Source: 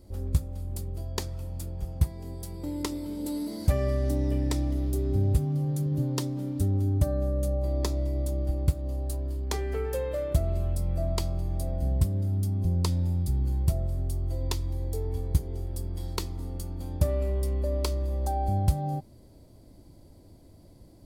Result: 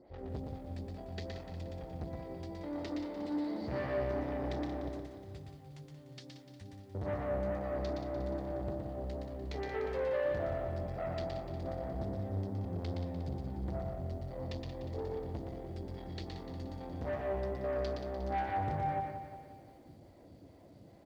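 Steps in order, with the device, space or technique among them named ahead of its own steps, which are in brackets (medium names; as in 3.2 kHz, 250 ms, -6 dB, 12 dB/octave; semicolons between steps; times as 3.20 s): 4.88–6.95 s: pre-emphasis filter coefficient 0.9; vibe pedal into a guitar amplifier (lamp-driven phase shifter 2.4 Hz; valve stage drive 35 dB, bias 0.3; cabinet simulation 79–4400 Hz, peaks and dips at 500 Hz +3 dB, 740 Hz +6 dB, 1.9 kHz +7 dB); delay 118 ms -4 dB; bit-crushed delay 179 ms, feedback 55%, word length 11-bit, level -9 dB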